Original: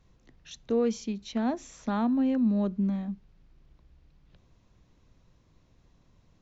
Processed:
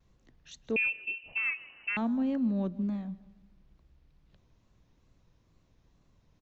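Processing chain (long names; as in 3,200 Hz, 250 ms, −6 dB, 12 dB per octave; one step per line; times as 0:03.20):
tape wow and flutter 81 cents
repeating echo 157 ms, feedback 49%, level −20 dB
0:00.76–0:01.97: voice inversion scrambler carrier 2,900 Hz
level −4 dB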